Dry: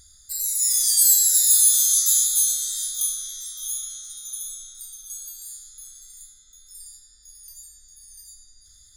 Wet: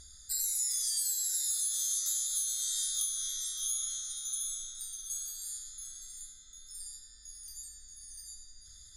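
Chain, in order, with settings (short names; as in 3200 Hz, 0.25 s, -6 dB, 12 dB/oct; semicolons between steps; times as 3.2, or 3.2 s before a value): Bessel low-pass 10000 Hz, order 4; compressor 16:1, threshold -29 dBFS, peak gain reduction 15 dB; on a send: reverb RT60 0.90 s, pre-delay 3 ms, DRR 11 dB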